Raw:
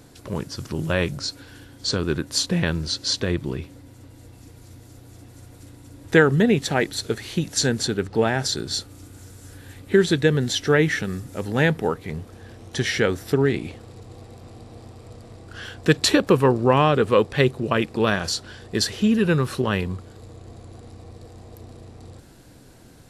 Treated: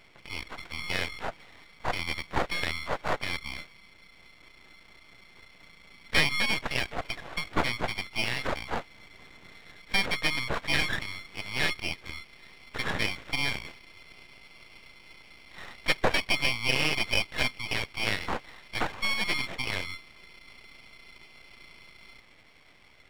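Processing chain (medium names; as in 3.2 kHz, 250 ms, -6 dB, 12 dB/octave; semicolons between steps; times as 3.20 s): split-band scrambler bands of 2 kHz; peaking EQ 4.2 kHz +5.5 dB 1.4 oct; careless resampling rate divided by 8×, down none, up hold; tape spacing loss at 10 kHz 32 dB; half-wave rectifier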